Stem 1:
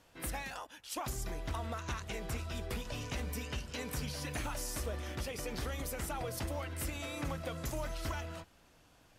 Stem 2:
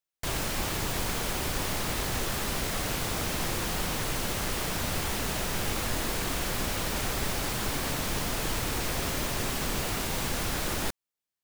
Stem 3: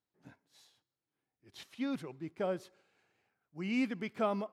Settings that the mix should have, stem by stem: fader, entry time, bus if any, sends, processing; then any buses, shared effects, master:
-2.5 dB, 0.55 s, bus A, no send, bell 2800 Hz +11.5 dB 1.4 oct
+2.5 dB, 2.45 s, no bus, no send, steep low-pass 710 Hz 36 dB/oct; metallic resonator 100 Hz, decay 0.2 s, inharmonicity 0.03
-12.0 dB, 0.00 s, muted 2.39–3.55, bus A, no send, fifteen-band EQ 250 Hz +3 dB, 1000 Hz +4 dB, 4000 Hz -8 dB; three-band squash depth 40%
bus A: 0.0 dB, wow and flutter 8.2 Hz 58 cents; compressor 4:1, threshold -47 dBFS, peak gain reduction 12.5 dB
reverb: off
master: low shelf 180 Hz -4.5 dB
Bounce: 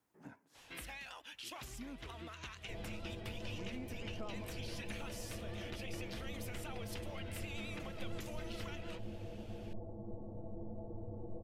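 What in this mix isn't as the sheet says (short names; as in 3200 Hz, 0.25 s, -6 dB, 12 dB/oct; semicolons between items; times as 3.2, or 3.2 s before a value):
stem 2 +2.5 dB -> -4.5 dB; stem 3 -12.0 dB -> -3.0 dB; master: missing low shelf 180 Hz -4.5 dB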